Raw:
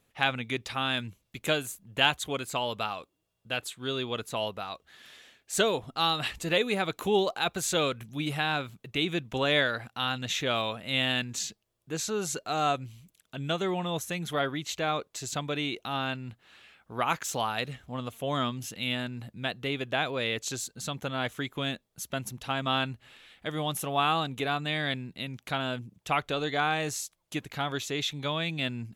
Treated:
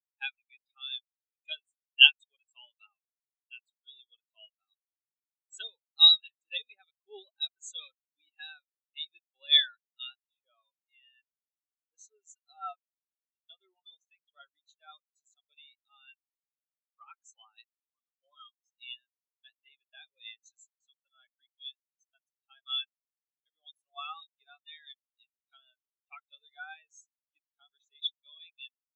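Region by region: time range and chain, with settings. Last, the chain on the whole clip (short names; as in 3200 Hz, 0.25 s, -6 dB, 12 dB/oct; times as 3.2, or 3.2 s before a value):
10.15–11.94 de-esser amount 70% + tape spacing loss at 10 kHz 26 dB
whole clip: weighting filter ITU-R 468; spectral expander 4:1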